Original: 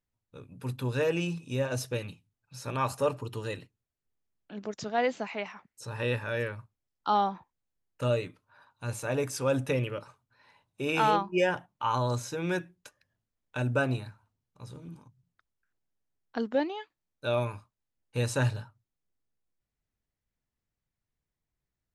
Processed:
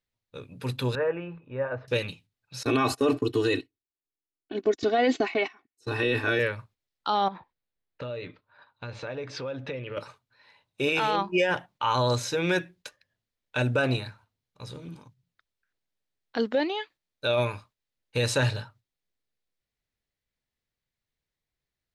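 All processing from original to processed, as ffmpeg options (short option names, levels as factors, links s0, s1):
-filter_complex "[0:a]asettb=1/sr,asplit=3[s0][s1][s2];[s0]atrim=end=0.954[s3];[s1]atrim=start=0.95:end=1.88,asetpts=PTS-STARTPTS,afade=t=in:d=0.004:c=qsin,afade=t=out:st=0.926:d=0.004:c=qsin,lowpass=f=1500:w=0.5412,lowpass=f=1500:w=1.3066,equalizer=f=210:t=o:w=2.8:g=-11[s4];[s2]atrim=start=1.876[s5];[s3][s4]acrossfade=d=0.004:c1=hsin:c2=qsin[s6];[s6][s5]acrossfade=d=0.004:c1=qsin:c2=hsin,asettb=1/sr,asplit=3[s7][s8][s9];[s7]atrim=end=2.634[s10];[s8]atrim=start=2.63:end=6.39,asetpts=PTS-STARTPTS,afade=t=in:d=0.004:c=qsin,afade=t=out:st=3.756:d=0.004:c=qsin,equalizer=f=280:t=o:w=0.91:g=13,aecho=1:1:2.7:0.79,atrim=end_sample=165816,agate=range=0.126:threshold=0.0126:ratio=16:release=100:detection=peak[s11];[s9]atrim=start=6.386[s12];[s10][s11]acrossfade=d=0.004:c1=hsin:c2=qsin[s13];[s13][s12]acrossfade=d=0.004:c1=qsin:c2=hsin,asettb=1/sr,asplit=3[s14][s15][s16];[s14]atrim=end=7.284[s17];[s15]atrim=start=7.28:end=9.97,asetpts=PTS-STARTPTS,afade=t=in:d=0.004:c=qsin,afade=t=out:st=2.686:d=0.004:c=qsin,lowpass=f=4200:w=0.5412,lowpass=f=4200:w=1.3066,equalizer=f=3000:t=o:w=1:g=-4,acompressor=threshold=0.0126:ratio=6:attack=3.2:release=140:knee=1:detection=peak[s18];[s16]atrim=start=9.966[s19];[s17][s18]acrossfade=d=0.004:c1=hsin:c2=qsin[s20];[s20][s19]acrossfade=d=0.004:c1=qsin:c2=hsin,agate=range=0.501:threshold=0.00126:ratio=16:detection=peak,equalizer=f=500:t=o:w=1:g=5,equalizer=f=2000:t=o:w=1:g=6,equalizer=f=4000:t=o:w=1:g=9,alimiter=limit=0.133:level=0:latency=1:release=14,volume=1.33"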